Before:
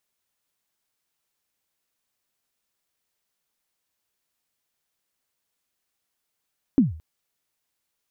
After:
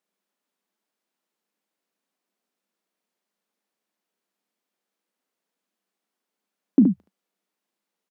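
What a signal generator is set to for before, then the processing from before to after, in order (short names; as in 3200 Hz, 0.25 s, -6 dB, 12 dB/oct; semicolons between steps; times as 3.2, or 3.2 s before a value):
kick drum length 0.22 s, from 300 Hz, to 79 Hz, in 0.15 s, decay 0.42 s, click off, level -10 dB
elliptic high-pass 190 Hz, stop band 40 dB; tilt -2.5 dB/oct; on a send: early reflections 36 ms -16 dB, 73 ms -5.5 dB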